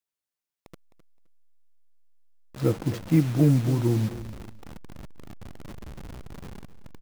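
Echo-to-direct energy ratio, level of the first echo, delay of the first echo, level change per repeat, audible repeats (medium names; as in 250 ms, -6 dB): -15.0 dB, -15.0 dB, 260 ms, -13.5 dB, 2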